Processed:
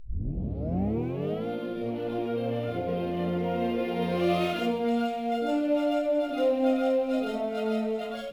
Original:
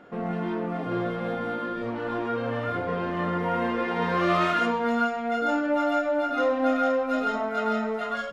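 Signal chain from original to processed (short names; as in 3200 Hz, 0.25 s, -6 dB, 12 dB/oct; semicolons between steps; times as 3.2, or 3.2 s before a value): tape start at the beginning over 1.48 s; band shelf 1300 Hz -14.5 dB 1.3 oct; upward compressor, threshold -40 dBFS; on a send: thin delay 0.662 s, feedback 76%, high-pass 2800 Hz, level -13 dB; on the sum: decimation joined by straight lines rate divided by 3×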